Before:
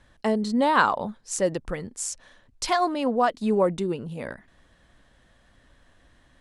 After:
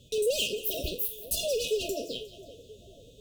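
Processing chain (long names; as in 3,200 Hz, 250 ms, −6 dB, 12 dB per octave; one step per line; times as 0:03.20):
peak hold with a decay on every bin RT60 0.58 s
wrong playback speed 7.5 ips tape played at 15 ips
hard clipping −23.5 dBFS, distortion −6 dB
notch comb filter 330 Hz
on a send: echo with a time of its own for lows and highs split 1,500 Hz, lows 490 ms, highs 179 ms, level −16 dB
on the sum: brick-wall band-stop 690–2,500 Hz
level +2 dB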